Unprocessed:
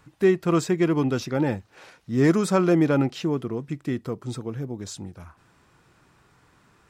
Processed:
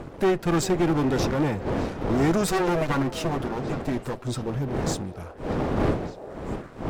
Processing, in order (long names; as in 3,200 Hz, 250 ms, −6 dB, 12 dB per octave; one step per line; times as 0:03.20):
0:02.47–0:04.28: lower of the sound and its delayed copy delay 7.9 ms
wind on the microphone 440 Hz −33 dBFS
leveller curve on the samples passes 1
in parallel at +1 dB: brickwall limiter −16 dBFS, peak gain reduction 8.5 dB
on the sum: asymmetric clip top −21.5 dBFS
on a send: echo through a band-pass that steps 397 ms, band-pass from 580 Hz, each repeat 1.4 octaves, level −11.5 dB
on the sum: level −5 dB